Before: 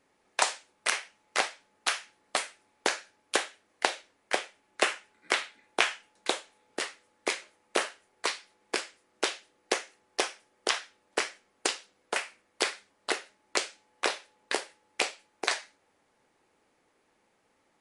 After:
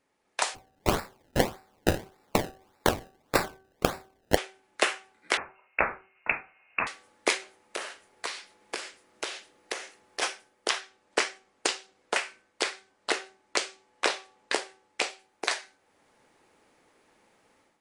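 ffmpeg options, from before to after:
ffmpeg -i in.wav -filter_complex "[0:a]asplit=3[link_01][link_02][link_03];[link_01]afade=type=out:start_time=0.54:duration=0.02[link_04];[link_02]acrusher=samples=27:mix=1:aa=0.000001:lfo=1:lforange=27:lforate=1.7,afade=type=in:start_time=0.54:duration=0.02,afade=type=out:start_time=4.36:duration=0.02[link_05];[link_03]afade=type=in:start_time=4.36:duration=0.02[link_06];[link_04][link_05][link_06]amix=inputs=3:normalize=0,asettb=1/sr,asplit=3[link_07][link_08][link_09];[link_07]atrim=end=5.374[link_10];[link_08]atrim=start=5.37:end=6.87,asetpts=PTS-STARTPTS,afade=type=in:duration=0.004:curve=qsin,afade=type=out:start_time=1.496:duration=0.004:curve=qsin,lowpass=frequency=2600:width_type=q:width=0.5098,lowpass=frequency=2600:width_type=q:width=0.6013,lowpass=frequency=2600:width_type=q:width=0.9,lowpass=frequency=2600:width_type=q:width=2.563,afreqshift=-3000[link_11];[link_09]atrim=start=6.866[link_12];[link_10][link_11]acrossfade=duration=0.004:curve1=hsin:curve2=qsin[link_13];[link_13][link_12]acrossfade=duration=0.004:curve1=qsin:curve2=hsin,asplit=3[link_14][link_15][link_16];[link_14]afade=type=out:start_time=7.37:duration=0.02[link_17];[link_15]acompressor=threshold=-39dB:ratio=3:attack=3.2:release=140:knee=1:detection=peak,afade=type=in:start_time=7.37:duration=0.02,afade=type=out:start_time=10.21:duration=0.02[link_18];[link_16]afade=type=in:start_time=10.21:duration=0.02[link_19];[link_17][link_18][link_19]amix=inputs=3:normalize=0,asettb=1/sr,asplit=3[link_20][link_21][link_22];[link_20]atrim=end=10.814[link_23];[link_21]atrim=start=10.81:end=15.1,asetpts=PTS-STARTPTS,afade=type=in:duration=0.004:curve=qsin,afade=type=out:start_time=4.286:duration=0.004:curve=qsin,lowpass=frequency=9500:width=0.5412,lowpass=frequency=9500:width=1.3066[link_24];[link_22]atrim=start=15.096[link_25];[link_23][link_24]acrossfade=duration=0.004:curve1=hsin:curve2=qsin[link_26];[link_26][link_25]acrossfade=duration=0.004:curve1=qsin:curve2=hsin,bandreject=frequency=382.3:width_type=h:width=4,bandreject=frequency=764.6:width_type=h:width=4,bandreject=frequency=1146.9:width_type=h:width=4,bandreject=frequency=1529.2:width_type=h:width=4,dynaudnorm=framelen=220:gausssize=3:maxgain=11.5dB,volume=-5dB" out.wav

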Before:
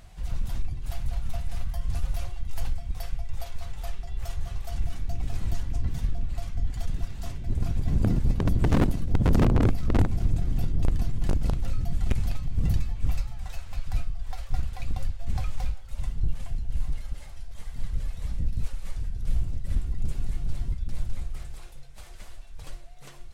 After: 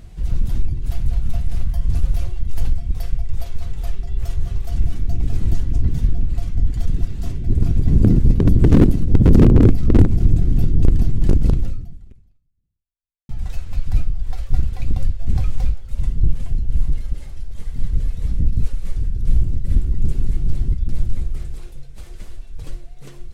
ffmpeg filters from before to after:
ffmpeg -i in.wav -filter_complex "[0:a]asplit=2[link_01][link_02];[link_01]atrim=end=13.29,asetpts=PTS-STARTPTS,afade=type=out:start_time=11.6:duration=1.69:curve=exp[link_03];[link_02]atrim=start=13.29,asetpts=PTS-STARTPTS,afade=type=in:duration=0.004:curve=hsin[link_04];[link_03][link_04]concat=n=2:v=0:a=1,lowshelf=frequency=520:width_type=q:width=1.5:gain=8,volume=2dB" out.wav

